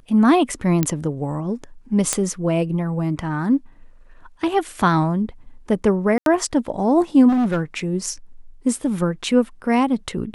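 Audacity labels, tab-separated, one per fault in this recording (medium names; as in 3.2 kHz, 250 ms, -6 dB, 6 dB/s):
0.830000	0.830000	pop -5 dBFS
2.130000	2.130000	pop -4 dBFS
6.180000	6.260000	dropout 82 ms
7.280000	7.620000	clipped -16 dBFS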